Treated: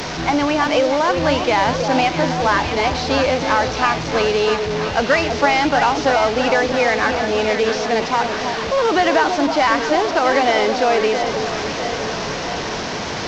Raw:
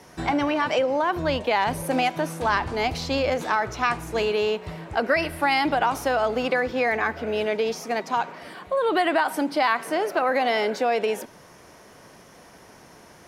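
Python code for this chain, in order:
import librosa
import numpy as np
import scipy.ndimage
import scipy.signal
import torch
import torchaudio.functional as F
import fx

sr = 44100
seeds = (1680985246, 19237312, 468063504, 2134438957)

y = fx.delta_mod(x, sr, bps=32000, step_db=-25.5)
y = fx.echo_alternate(y, sr, ms=325, hz=980.0, feedback_pct=76, wet_db=-6)
y = y * librosa.db_to_amplitude(5.5)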